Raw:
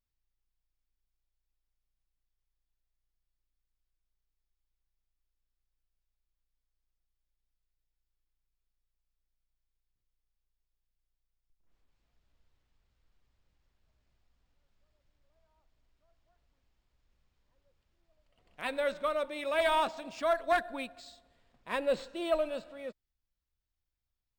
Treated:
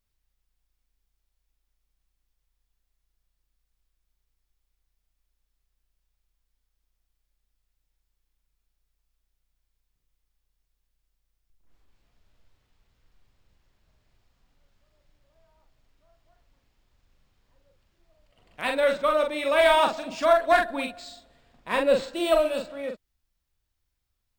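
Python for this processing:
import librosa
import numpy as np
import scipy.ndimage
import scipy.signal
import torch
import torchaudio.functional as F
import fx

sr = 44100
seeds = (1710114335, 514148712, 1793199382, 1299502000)

y = fx.high_shelf(x, sr, hz=6500.0, db=9.0, at=(22.13, 22.62))
y = fx.doubler(y, sr, ms=43.0, db=-4.5)
y = y * librosa.db_to_amplitude(7.5)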